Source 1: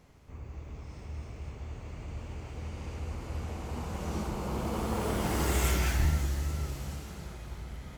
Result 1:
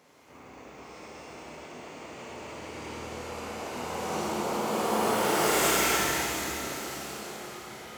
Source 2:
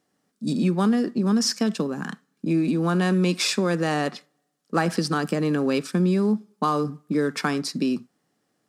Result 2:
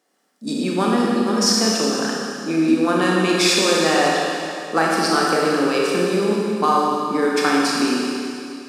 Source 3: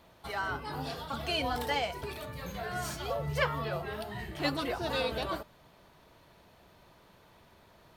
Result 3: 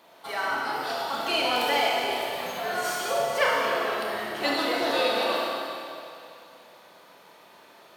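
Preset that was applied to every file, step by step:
high-pass filter 340 Hz 12 dB per octave
four-comb reverb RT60 2.6 s, combs from 25 ms, DRR −3.5 dB
level +4 dB

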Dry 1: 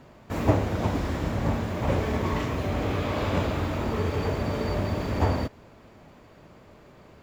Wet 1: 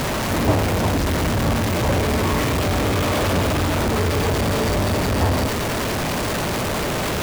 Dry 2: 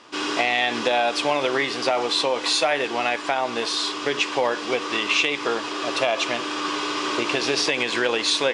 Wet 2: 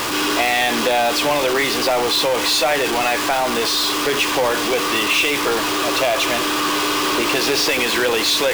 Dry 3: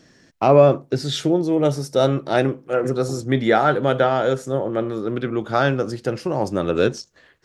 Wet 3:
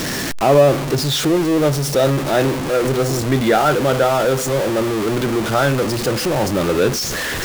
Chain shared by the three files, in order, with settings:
converter with a step at zero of −16 dBFS
level −1 dB

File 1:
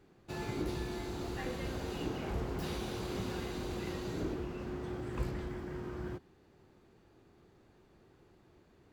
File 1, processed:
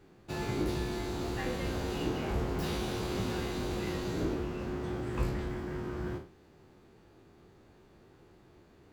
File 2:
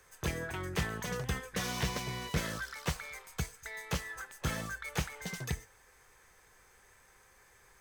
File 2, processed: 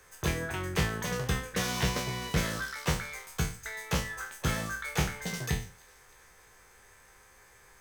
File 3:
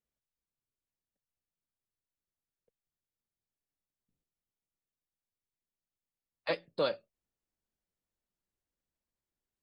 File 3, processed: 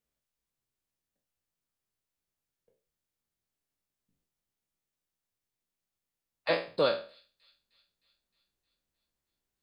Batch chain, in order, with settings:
peak hold with a decay on every bin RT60 0.39 s
delay with a high-pass on its return 309 ms, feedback 61%, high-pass 3,700 Hz, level −22.5 dB
level +3 dB

